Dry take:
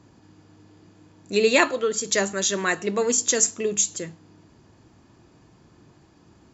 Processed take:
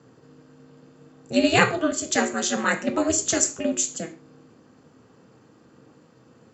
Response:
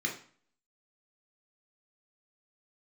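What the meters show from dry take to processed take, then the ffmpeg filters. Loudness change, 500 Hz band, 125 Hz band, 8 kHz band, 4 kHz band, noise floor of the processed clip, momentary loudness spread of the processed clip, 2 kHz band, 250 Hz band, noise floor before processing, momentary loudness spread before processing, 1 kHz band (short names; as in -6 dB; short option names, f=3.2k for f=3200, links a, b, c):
-1.0 dB, -2.5 dB, +4.5 dB, n/a, -1.0 dB, -56 dBFS, 7 LU, +0.5 dB, +5.0 dB, -56 dBFS, 6 LU, +2.5 dB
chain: -filter_complex "[0:a]aeval=exprs='val(0)*sin(2*PI*160*n/s)':c=same,highpass=f=110:w=0.5412,highpass=f=110:w=1.3066,asplit=2[a][b];[1:a]atrim=start_sample=2205,afade=t=out:st=0.2:d=0.01,atrim=end_sample=9261[c];[b][c]afir=irnorm=-1:irlink=0,volume=-10.5dB[d];[a][d]amix=inputs=2:normalize=0,volume=3dB"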